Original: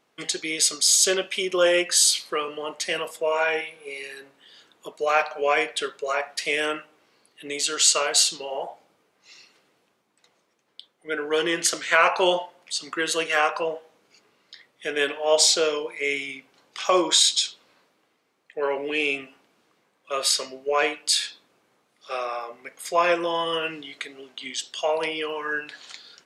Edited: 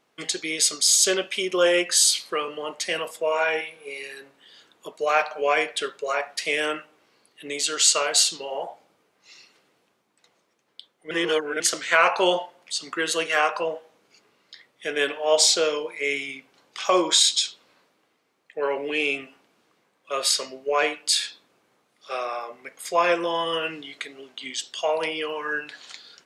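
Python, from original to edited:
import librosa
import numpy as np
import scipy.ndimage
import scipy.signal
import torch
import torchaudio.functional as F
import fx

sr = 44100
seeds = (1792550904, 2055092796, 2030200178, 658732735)

y = fx.edit(x, sr, fx.reverse_span(start_s=11.11, length_s=0.49), tone=tone)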